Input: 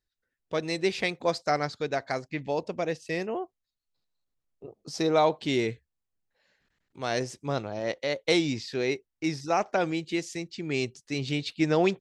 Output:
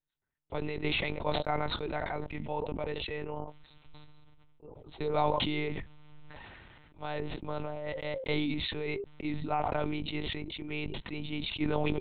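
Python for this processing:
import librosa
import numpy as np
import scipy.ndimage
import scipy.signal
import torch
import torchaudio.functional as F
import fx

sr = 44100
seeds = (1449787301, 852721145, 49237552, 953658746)

y = fx.lpc_monotone(x, sr, seeds[0], pitch_hz=150.0, order=8)
y = fx.peak_eq(y, sr, hz=910.0, db=6.0, octaves=0.34)
y = fx.notch(y, sr, hz=1700.0, q=11.0)
y = fx.sustainer(y, sr, db_per_s=21.0)
y = y * 10.0 ** (-7.5 / 20.0)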